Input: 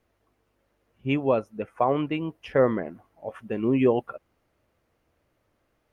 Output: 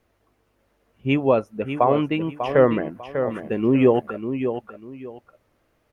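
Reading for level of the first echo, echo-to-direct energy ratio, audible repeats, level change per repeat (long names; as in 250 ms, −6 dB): −8.5 dB, −8.0 dB, 2, −12.0 dB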